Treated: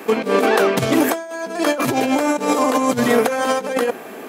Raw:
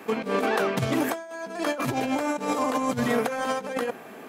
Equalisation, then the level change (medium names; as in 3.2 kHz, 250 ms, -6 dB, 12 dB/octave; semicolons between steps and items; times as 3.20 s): tilt EQ +1.5 dB/octave; peaking EQ 360 Hz +6.5 dB 1.8 oct; +6.0 dB